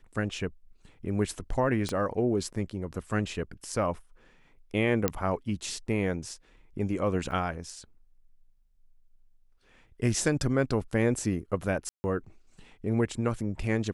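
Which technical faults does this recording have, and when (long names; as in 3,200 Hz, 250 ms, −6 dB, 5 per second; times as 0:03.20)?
0:01.89: click −18 dBFS
0:05.08: click −9 dBFS
0:07.31: drop-out 3.6 ms
0:11.89–0:12.04: drop-out 150 ms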